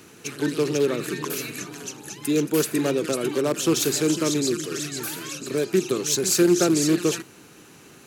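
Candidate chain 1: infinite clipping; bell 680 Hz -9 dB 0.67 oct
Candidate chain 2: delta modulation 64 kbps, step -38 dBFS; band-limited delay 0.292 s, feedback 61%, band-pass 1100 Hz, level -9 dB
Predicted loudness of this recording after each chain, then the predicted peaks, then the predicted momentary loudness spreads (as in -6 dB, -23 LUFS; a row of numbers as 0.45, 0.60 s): -23.5, -24.5 LUFS; -19.5, -8.5 dBFS; 2, 15 LU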